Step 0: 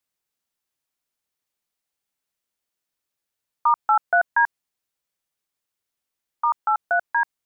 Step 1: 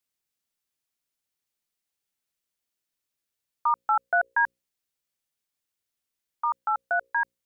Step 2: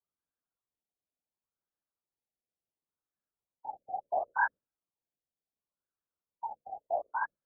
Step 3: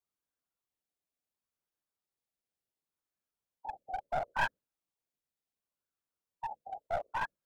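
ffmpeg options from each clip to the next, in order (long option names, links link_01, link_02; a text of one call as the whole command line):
ffmpeg -i in.wav -af "equalizer=frequency=920:width=0.74:gain=-4.5,bandreject=frequency=60:width_type=h:width=6,bandreject=frequency=120:width_type=h:width=6,bandreject=frequency=180:width_type=h:width=6,bandreject=frequency=240:width_type=h:width=6,bandreject=frequency=300:width_type=h:width=6,bandreject=frequency=360:width_type=h:width=6,bandreject=frequency=420:width_type=h:width=6,bandreject=frequency=480:width_type=h:width=6,bandreject=frequency=540:width_type=h:width=6,volume=-1dB" out.wav
ffmpeg -i in.wav -af "flanger=delay=16:depth=6.1:speed=2.3,afftfilt=real='hypot(re,im)*cos(2*PI*random(0))':imag='hypot(re,im)*sin(2*PI*random(1))':win_size=512:overlap=0.75,afftfilt=real='re*lt(b*sr/1024,790*pow(1800/790,0.5+0.5*sin(2*PI*0.71*pts/sr)))':imag='im*lt(b*sr/1024,790*pow(1800/790,0.5+0.5*sin(2*PI*0.71*pts/sr)))':win_size=1024:overlap=0.75,volume=5.5dB" out.wav
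ffmpeg -i in.wav -af "aeval=exprs='clip(val(0),-1,0.02)':channel_layout=same" out.wav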